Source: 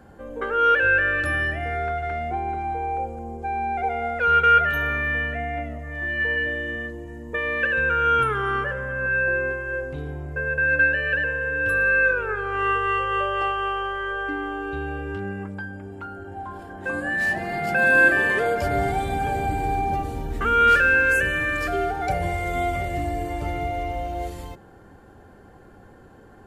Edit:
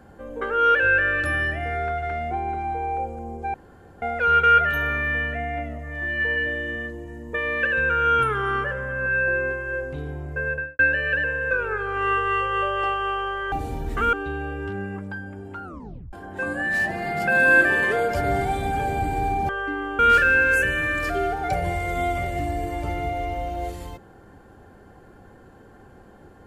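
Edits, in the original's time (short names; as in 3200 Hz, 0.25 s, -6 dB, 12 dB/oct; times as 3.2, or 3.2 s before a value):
3.54–4.02 room tone
10.47–10.79 studio fade out
11.51–12.09 cut
14.1–14.6 swap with 19.96–20.57
16.11 tape stop 0.49 s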